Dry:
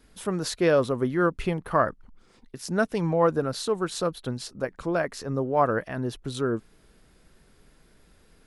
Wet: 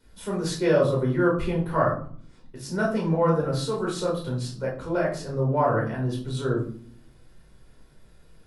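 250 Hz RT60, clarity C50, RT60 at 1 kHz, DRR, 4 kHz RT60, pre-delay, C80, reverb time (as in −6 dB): 0.90 s, 6.5 dB, 0.45 s, −3.5 dB, 0.35 s, 10 ms, 11.0 dB, 0.50 s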